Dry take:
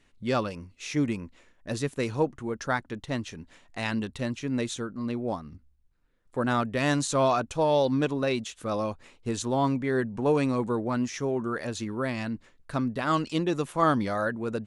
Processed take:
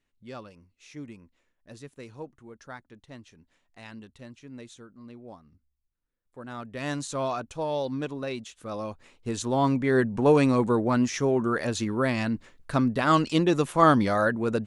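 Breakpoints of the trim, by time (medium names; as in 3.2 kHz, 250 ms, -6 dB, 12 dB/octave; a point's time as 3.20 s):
6.46 s -14.5 dB
6.88 s -6 dB
8.64 s -6 dB
9.99 s +4.5 dB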